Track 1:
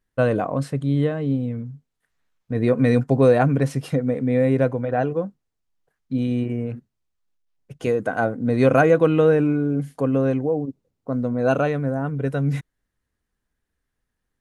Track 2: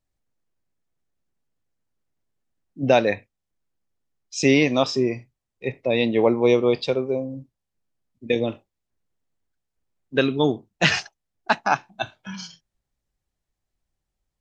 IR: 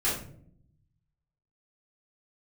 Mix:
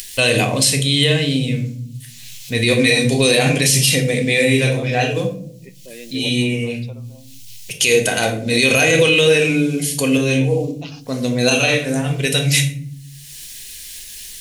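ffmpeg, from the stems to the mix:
-filter_complex "[0:a]bandreject=frequency=50:width_type=h:width=6,bandreject=frequency=100:width_type=h:width=6,bandreject=frequency=150:width_type=h:width=6,bandreject=frequency=200:width_type=h:width=6,bandreject=frequency=250:width_type=h:width=6,acompressor=mode=upward:threshold=-37dB:ratio=2.5,aexciter=amount=15.3:drive=7.9:freq=2200,volume=1dB,asplit=2[link_01][link_02];[link_02]volume=-11.5dB[link_03];[1:a]asplit=2[link_04][link_05];[link_05]afreqshift=0.49[link_06];[link_04][link_06]amix=inputs=2:normalize=1,volume=-14dB,asplit=2[link_07][link_08];[link_08]apad=whole_len=635444[link_09];[link_01][link_09]sidechaincompress=threshold=-44dB:ratio=8:attack=11:release=178[link_10];[2:a]atrim=start_sample=2205[link_11];[link_03][link_11]afir=irnorm=-1:irlink=0[link_12];[link_10][link_07][link_12]amix=inputs=3:normalize=0,alimiter=limit=-4dB:level=0:latency=1:release=43"

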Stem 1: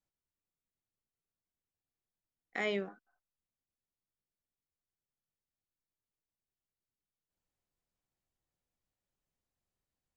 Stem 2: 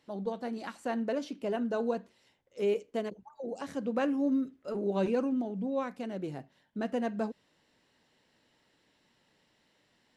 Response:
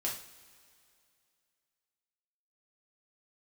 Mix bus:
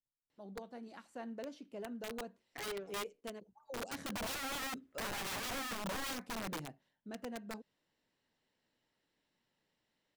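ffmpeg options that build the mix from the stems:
-filter_complex "[0:a]aecho=1:1:7.1:0.99,adynamicsmooth=sensitivity=4.5:basefreq=570,volume=-10.5dB[link_01];[1:a]adelay=300,volume=-3dB,afade=type=in:start_time=3.57:duration=0.26:silence=0.334965,afade=type=out:start_time=6.47:duration=0.43:silence=0.334965[link_02];[link_01][link_02]amix=inputs=2:normalize=0,aeval=exprs='(mod(59.6*val(0)+1,2)-1)/59.6':channel_layout=same"

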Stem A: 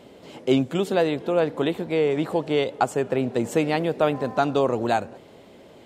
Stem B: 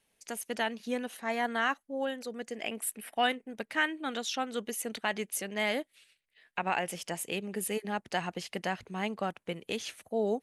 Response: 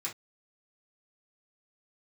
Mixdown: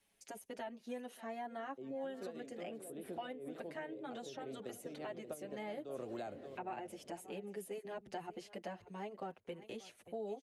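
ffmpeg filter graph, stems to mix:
-filter_complex "[0:a]equalizer=frequency=910:width_type=o:width=0.41:gain=-11.5,acompressor=threshold=-23dB:ratio=6,adelay=1300,volume=-5.5dB,asplit=2[link_01][link_02];[link_02]volume=-17.5dB[link_03];[1:a]asplit=2[link_04][link_05];[link_05]adelay=6.7,afreqshift=-0.69[link_06];[link_04][link_06]amix=inputs=2:normalize=1,volume=0.5dB,asplit=3[link_07][link_08][link_09];[link_08]volume=-20dB[link_10];[link_09]apad=whole_len=315627[link_11];[link_01][link_11]sidechaincompress=threshold=-47dB:ratio=12:attack=8.6:release=173[link_12];[link_03][link_10]amix=inputs=2:normalize=0,aecho=0:1:582:1[link_13];[link_12][link_07][link_13]amix=inputs=3:normalize=0,acrossover=split=340|740[link_14][link_15][link_16];[link_14]acompressor=threshold=-55dB:ratio=4[link_17];[link_15]acompressor=threshold=-43dB:ratio=4[link_18];[link_16]acompressor=threshold=-57dB:ratio=4[link_19];[link_17][link_18][link_19]amix=inputs=3:normalize=0,bandreject=frequency=470:width=14"

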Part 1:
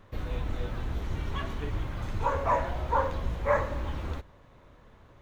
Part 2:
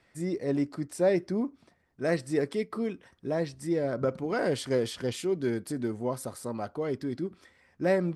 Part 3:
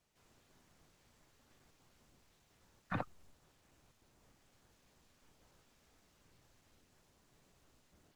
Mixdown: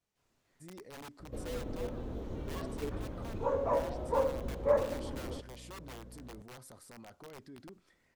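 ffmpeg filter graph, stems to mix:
ffmpeg -i stem1.wav -i stem2.wav -i stem3.wav -filter_complex "[0:a]equalizer=frequency=250:width_type=o:width=1:gain=9,equalizer=frequency=500:width_type=o:width=1:gain=12,equalizer=frequency=2000:width_type=o:width=1:gain=-5,aeval=exprs='val(0)+0.01*(sin(2*PI*60*n/s)+sin(2*PI*2*60*n/s)/2+sin(2*PI*3*60*n/s)/3+sin(2*PI*4*60*n/s)/4+sin(2*PI*5*60*n/s)/5)':channel_layout=same,adelay=1200,volume=-11dB[link_01];[1:a]aeval=exprs='(mod(15.8*val(0)+1,2)-1)/15.8':channel_layout=same,adelay=450,volume=-12dB[link_02];[2:a]flanger=delay=22.5:depth=5.8:speed=2,volume=-4.5dB[link_03];[link_02][link_03]amix=inputs=2:normalize=0,alimiter=level_in=19.5dB:limit=-24dB:level=0:latency=1:release=22,volume=-19.5dB,volume=0dB[link_04];[link_01][link_04]amix=inputs=2:normalize=0" out.wav

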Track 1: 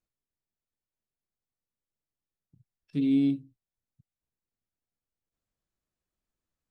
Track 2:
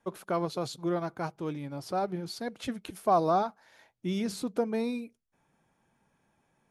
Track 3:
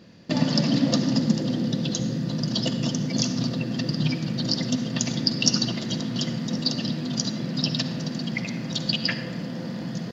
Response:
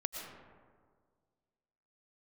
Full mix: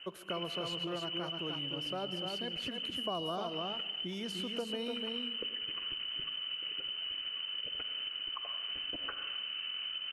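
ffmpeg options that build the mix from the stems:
-filter_complex "[0:a]volume=-4.5dB[link_01];[1:a]volume=-6dB,asplit=4[link_02][link_03][link_04][link_05];[link_03]volume=-10dB[link_06];[link_04]volume=-3.5dB[link_07];[2:a]volume=0.5dB[link_08];[link_05]apad=whole_len=446716[link_09];[link_08][link_09]sidechaincompress=threshold=-55dB:ratio=3:attack=16:release=215[link_10];[link_01][link_10]amix=inputs=2:normalize=0,lowpass=frequency=2700:width_type=q:width=0.5098,lowpass=frequency=2700:width_type=q:width=0.6013,lowpass=frequency=2700:width_type=q:width=0.9,lowpass=frequency=2700:width_type=q:width=2.563,afreqshift=-3200,acompressor=threshold=-35dB:ratio=6,volume=0dB[link_11];[3:a]atrim=start_sample=2205[link_12];[link_06][link_12]afir=irnorm=-1:irlink=0[link_13];[link_07]aecho=0:1:298:1[link_14];[link_02][link_11][link_13][link_14]amix=inputs=4:normalize=0,equalizer=frequency=800:width_type=o:width=0.43:gain=-6.5,acrossover=split=450|3400[link_15][link_16][link_17];[link_15]acompressor=threshold=-42dB:ratio=4[link_18];[link_16]acompressor=threshold=-37dB:ratio=4[link_19];[link_17]acompressor=threshold=-49dB:ratio=4[link_20];[link_18][link_19][link_20]amix=inputs=3:normalize=0"

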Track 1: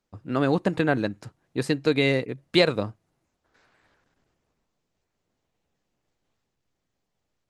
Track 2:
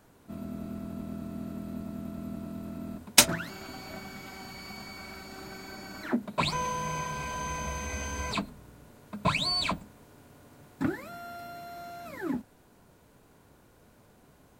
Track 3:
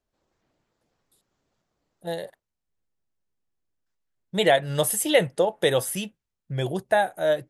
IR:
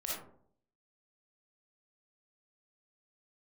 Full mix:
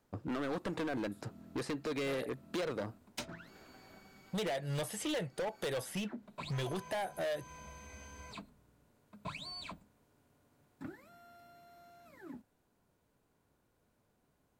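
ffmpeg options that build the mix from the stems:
-filter_complex "[0:a]equalizer=frequency=410:width=0.47:gain=10,alimiter=limit=-6.5dB:level=0:latency=1:release=13,volume=-4dB[link_01];[1:a]volume=-16.5dB[link_02];[2:a]volume=-0.5dB[link_03];[link_01][link_02][link_03]amix=inputs=3:normalize=0,acrossover=split=810|5500[link_04][link_05][link_06];[link_04]acompressor=threshold=-33dB:ratio=4[link_07];[link_05]acompressor=threshold=-38dB:ratio=4[link_08];[link_06]acompressor=threshold=-54dB:ratio=4[link_09];[link_07][link_08][link_09]amix=inputs=3:normalize=0,asoftclip=type=hard:threshold=-33dB"

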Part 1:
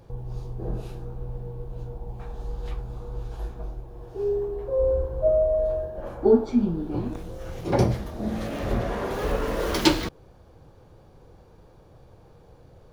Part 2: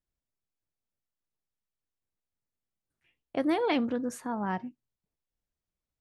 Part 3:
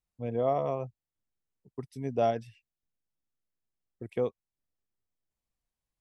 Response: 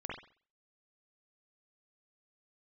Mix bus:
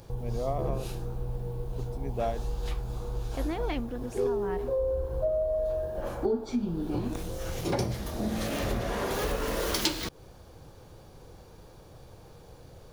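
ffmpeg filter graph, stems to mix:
-filter_complex "[0:a]highshelf=frequency=3100:gain=11.5,acompressor=threshold=-28dB:ratio=4,volume=1dB[link_01];[1:a]volume=-6.5dB[link_02];[2:a]volume=-4.5dB[link_03];[link_01][link_02][link_03]amix=inputs=3:normalize=0"

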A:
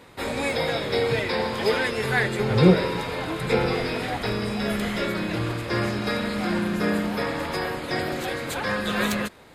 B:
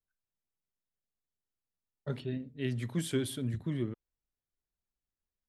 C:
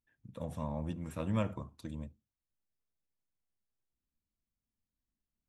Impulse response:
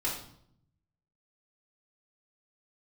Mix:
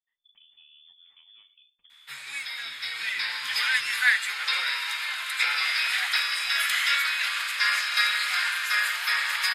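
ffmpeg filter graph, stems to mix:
-filter_complex "[0:a]highpass=frequency=1500:width=0.5412,highpass=frequency=1500:width=1.3066,dynaudnorm=framelen=830:gausssize=3:maxgain=15.5dB,adelay=1900,volume=-5dB[link_01];[1:a]volume=-16dB,asplit=2[link_02][link_03];[link_03]volume=-23dB[link_04];[2:a]acompressor=threshold=-38dB:ratio=6,volume=-10dB[link_05];[link_02][link_05]amix=inputs=2:normalize=0,lowpass=frequency=3100:width_type=q:width=0.5098,lowpass=frequency=3100:width_type=q:width=0.6013,lowpass=frequency=3100:width_type=q:width=0.9,lowpass=frequency=3100:width_type=q:width=2.563,afreqshift=-3600,alimiter=level_in=21.5dB:limit=-24dB:level=0:latency=1:release=479,volume=-21.5dB,volume=0dB[link_06];[3:a]atrim=start_sample=2205[link_07];[link_04][link_07]afir=irnorm=-1:irlink=0[link_08];[link_01][link_06][link_08]amix=inputs=3:normalize=0"

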